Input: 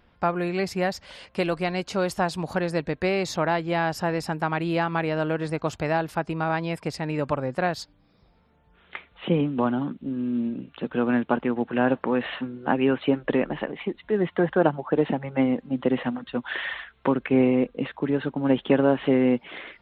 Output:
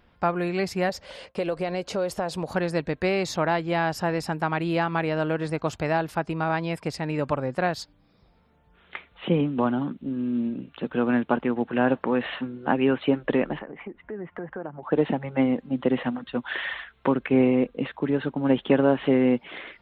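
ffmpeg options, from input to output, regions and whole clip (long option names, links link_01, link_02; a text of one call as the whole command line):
ffmpeg -i in.wav -filter_complex "[0:a]asettb=1/sr,asplit=3[link_01][link_02][link_03];[link_01]atrim=end=0.894[link_04];[link_02]atrim=start=0.89:end=2.48,asetpts=PTS-STARTPTS,afade=type=in:duration=0.004:curve=qsin,afade=type=out:start_time=1.586:duration=0.004:curve=qsin,agate=range=-33dB:threshold=-50dB:ratio=3:release=100:detection=peak,equalizer=frequency=520:width=1.7:gain=9,acompressor=threshold=-25dB:ratio=3:attack=3.2:release=140:knee=1:detection=peak[link_05];[link_03]atrim=start=2.476[link_06];[link_04][link_05]acrossfade=duration=0.004:curve1=hsin:curve2=qsin[link_07];[link_07][link_06]acrossfade=duration=0.004:curve1=qsin:curve2=hsin,asettb=1/sr,asplit=3[link_08][link_09][link_10];[link_08]atrim=end=13.594[link_11];[link_09]atrim=start=13.59:end=14.83,asetpts=PTS-STARTPTS,afade=type=in:duration=0.004:curve=qsin,afade=type=out:start_time=1.236:duration=0.004:curve=qsin,lowpass=frequency=2100:width=0.5412,lowpass=frequency=2100:width=1.3066,acompressor=threshold=-35dB:ratio=3:attack=3.2:release=140:knee=1:detection=peak[link_12];[link_10]atrim=start=14.826[link_13];[link_11][link_12]acrossfade=duration=0.004:curve1=hsin:curve2=qsin[link_14];[link_14][link_13]acrossfade=duration=0.004:curve1=qsin:curve2=hsin" out.wav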